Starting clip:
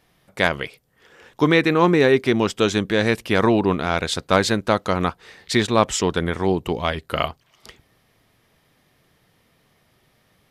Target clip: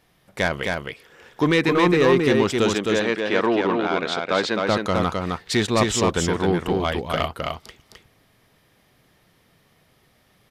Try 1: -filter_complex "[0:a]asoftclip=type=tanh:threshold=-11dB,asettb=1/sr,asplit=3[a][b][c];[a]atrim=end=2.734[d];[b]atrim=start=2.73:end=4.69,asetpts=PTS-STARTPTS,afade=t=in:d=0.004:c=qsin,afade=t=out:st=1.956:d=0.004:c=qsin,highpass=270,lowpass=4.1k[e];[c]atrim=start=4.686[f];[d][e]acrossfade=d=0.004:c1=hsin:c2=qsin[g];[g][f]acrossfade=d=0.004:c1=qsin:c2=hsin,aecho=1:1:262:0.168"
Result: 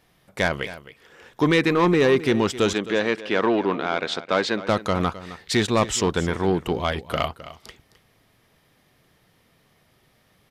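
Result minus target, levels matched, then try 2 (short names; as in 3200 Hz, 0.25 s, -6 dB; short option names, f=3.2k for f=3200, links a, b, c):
echo-to-direct -12 dB
-filter_complex "[0:a]asoftclip=type=tanh:threshold=-11dB,asettb=1/sr,asplit=3[a][b][c];[a]atrim=end=2.734[d];[b]atrim=start=2.73:end=4.69,asetpts=PTS-STARTPTS,afade=t=in:d=0.004:c=qsin,afade=t=out:st=1.956:d=0.004:c=qsin,highpass=270,lowpass=4.1k[e];[c]atrim=start=4.686[f];[d][e]acrossfade=d=0.004:c1=hsin:c2=qsin[g];[g][f]acrossfade=d=0.004:c1=qsin:c2=hsin,aecho=1:1:262:0.668"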